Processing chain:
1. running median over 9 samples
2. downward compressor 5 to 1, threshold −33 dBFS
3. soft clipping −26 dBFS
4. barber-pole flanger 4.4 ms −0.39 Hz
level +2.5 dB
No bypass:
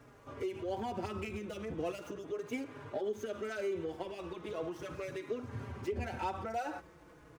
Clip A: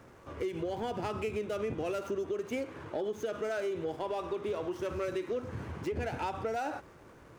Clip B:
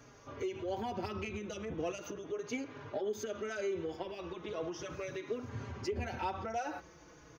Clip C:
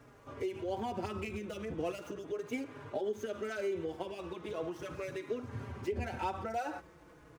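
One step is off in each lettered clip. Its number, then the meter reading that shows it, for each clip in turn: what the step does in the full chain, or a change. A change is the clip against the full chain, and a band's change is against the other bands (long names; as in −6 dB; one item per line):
4, 500 Hz band +1.5 dB
1, 8 kHz band +6.0 dB
3, distortion level −25 dB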